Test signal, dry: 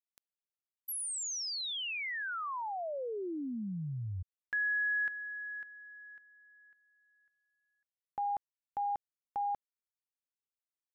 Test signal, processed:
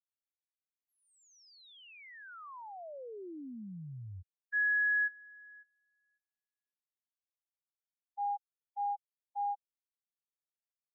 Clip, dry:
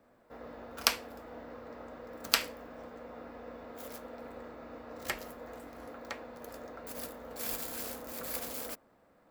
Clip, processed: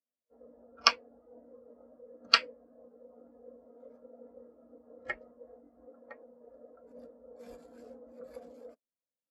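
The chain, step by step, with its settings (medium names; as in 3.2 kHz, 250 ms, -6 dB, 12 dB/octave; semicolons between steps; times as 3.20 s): low-pass 8.8 kHz 12 dB/octave; spectral contrast expander 2.5:1; trim +2.5 dB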